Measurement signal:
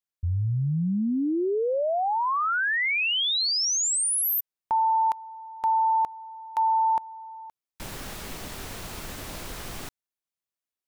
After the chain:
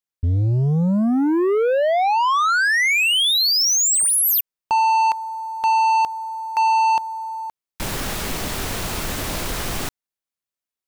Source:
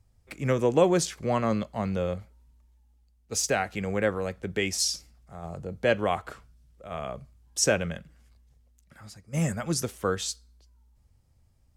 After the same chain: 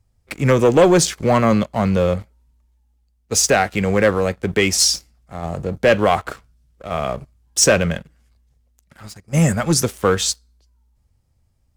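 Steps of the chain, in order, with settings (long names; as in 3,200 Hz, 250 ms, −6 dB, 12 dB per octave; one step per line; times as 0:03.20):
leveller curve on the samples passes 2
level +4.5 dB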